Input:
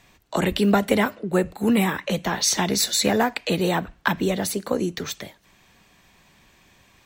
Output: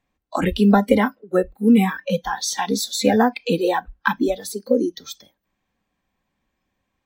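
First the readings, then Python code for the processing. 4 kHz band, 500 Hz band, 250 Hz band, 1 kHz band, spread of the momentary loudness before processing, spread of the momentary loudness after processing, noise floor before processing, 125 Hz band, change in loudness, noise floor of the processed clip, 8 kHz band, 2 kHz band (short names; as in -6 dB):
-3.0 dB, +3.5 dB, +4.0 dB, +3.0 dB, 8 LU, 11 LU, -58 dBFS, +1.0 dB, +2.5 dB, -77 dBFS, -4.5 dB, 0.0 dB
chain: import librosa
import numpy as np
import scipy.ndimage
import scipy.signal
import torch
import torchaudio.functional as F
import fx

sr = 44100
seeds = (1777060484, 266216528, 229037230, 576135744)

p1 = fx.noise_reduce_blind(x, sr, reduce_db=22)
p2 = fx.high_shelf(p1, sr, hz=2000.0, db=-10.5)
p3 = p2 + 0.35 * np.pad(p2, (int(3.8 * sr / 1000.0), 0))[:len(p2)]
p4 = fx.rider(p3, sr, range_db=3, speed_s=2.0)
p5 = p3 + (p4 * librosa.db_to_amplitude(1.0))
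y = p5 * librosa.db_to_amplitude(-2.0)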